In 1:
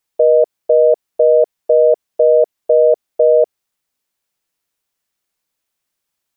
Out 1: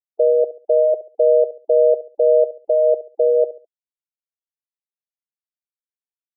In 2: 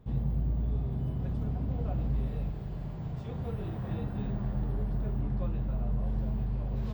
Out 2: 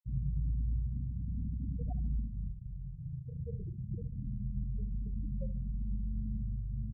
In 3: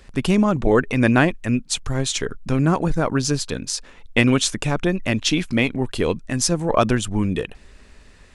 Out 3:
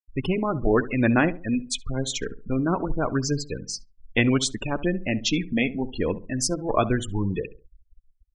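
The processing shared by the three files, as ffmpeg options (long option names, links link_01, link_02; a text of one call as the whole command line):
ffmpeg -i in.wav -filter_complex "[0:a]afftfilt=real='re*gte(hypot(re,im),0.0794)':imag='im*gte(hypot(re,im),0.0794)':win_size=1024:overlap=0.75,flanger=delay=1.9:depth=2.5:regen=-63:speed=0.27:shape=triangular,asplit=2[link_01][link_02];[link_02]adelay=69,lowpass=frequency=930:poles=1,volume=-14dB,asplit=2[link_03][link_04];[link_04]adelay=69,lowpass=frequency=930:poles=1,volume=0.34,asplit=2[link_05][link_06];[link_06]adelay=69,lowpass=frequency=930:poles=1,volume=0.34[link_07];[link_01][link_03][link_05][link_07]amix=inputs=4:normalize=0" out.wav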